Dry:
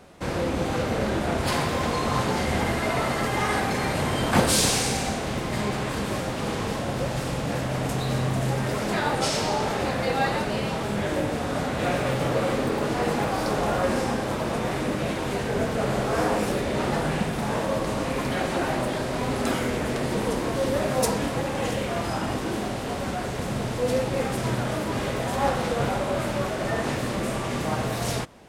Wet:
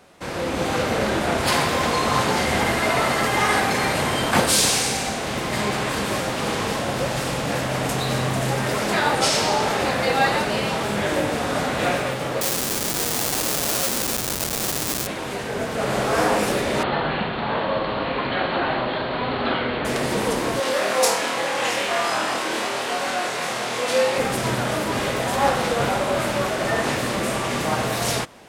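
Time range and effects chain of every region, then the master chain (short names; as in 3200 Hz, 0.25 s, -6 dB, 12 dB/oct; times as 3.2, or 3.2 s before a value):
12.41–15.07 Schmitt trigger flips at -24.5 dBFS + tone controls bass -3 dB, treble +14 dB
16.83–19.85 rippled Chebyshev low-pass 4400 Hz, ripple 3 dB + doubler 41 ms -12 dB
20.6–24.18 weighting filter A + flutter echo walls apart 4.3 m, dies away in 0.4 s
whole clip: tilt +2 dB/oct; AGC gain up to 6 dB; high shelf 4400 Hz -6 dB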